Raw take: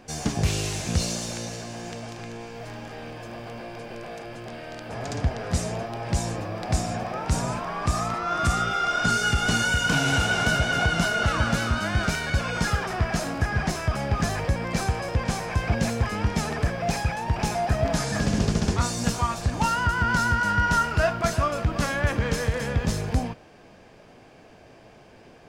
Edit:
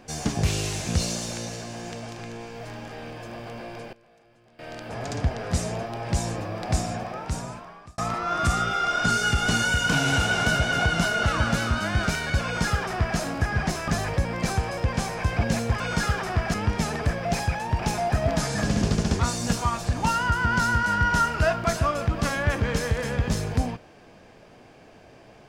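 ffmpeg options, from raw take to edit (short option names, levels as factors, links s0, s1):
-filter_complex "[0:a]asplit=7[s0][s1][s2][s3][s4][s5][s6];[s0]atrim=end=3.93,asetpts=PTS-STARTPTS,afade=t=out:st=3.74:d=0.19:c=log:silence=0.0944061[s7];[s1]atrim=start=3.93:end=4.59,asetpts=PTS-STARTPTS,volume=0.0944[s8];[s2]atrim=start=4.59:end=7.98,asetpts=PTS-STARTPTS,afade=t=in:d=0.19:c=log:silence=0.0944061,afade=t=out:st=2.19:d=1.2[s9];[s3]atrim=start=7.98:end=13.882,asetpts=PTS-STARTPTS,afade=t=in:d=0.004:c=hsin[s10];[s4]atrim=start=14.188:end=16.112[s11];[s5]atrim=start=12.438:end=13.182[s12];[s6]atrim=start=16.108[s13];[s7][s8][s9][s10]concat=n=4:v=0:a=1[s14];[s14][s11]acrossfade=d=0.004:c1=hsin:c2=hsin[s15];[s15][s12]acrossfade=d=0.004:c1=hsin:c2=hsin[s16];[s16][s13]acrossfade=d=0.004:c1=hsin:c2=hsin"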